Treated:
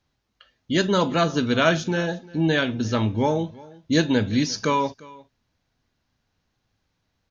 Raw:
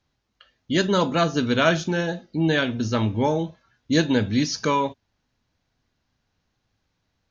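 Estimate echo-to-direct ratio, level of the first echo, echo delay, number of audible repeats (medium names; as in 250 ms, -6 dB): -22.0 dB, -22.0 dB, 350 ms, 1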